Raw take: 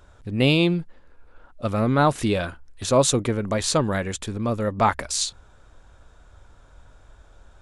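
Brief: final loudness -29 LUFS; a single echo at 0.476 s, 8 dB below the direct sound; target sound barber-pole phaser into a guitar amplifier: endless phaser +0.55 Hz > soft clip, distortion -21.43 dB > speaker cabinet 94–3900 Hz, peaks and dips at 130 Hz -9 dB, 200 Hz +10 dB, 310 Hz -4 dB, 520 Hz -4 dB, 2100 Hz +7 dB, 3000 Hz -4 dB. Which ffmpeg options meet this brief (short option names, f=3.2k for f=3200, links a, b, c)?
-filter_complex "[0:a]aecho=1:1:476:0.398,asplit=2[a][b];[b]afreqshift=0.55[c];[a][c]amix=inputs=2:normalize=1,asoftclip=threshold=-12.5dB,highpass=94,equalizer=f=130:t=q:w=4:g=-9,equalizer=f=200:t=q:w=4:g=10,equalizer=f=310:t=q:w=4:g=-4,equalizer=f=520:t=q:w=4:g=-4,equalizer=f=2.1k:t=q:w=4:g=7,equalizer=f=3k:t=q:w=4:g=-4,lowpass=f=3.9k:w=0.5412,lowpass=f=3.9k:w=1.3066,volume=-1.5dB"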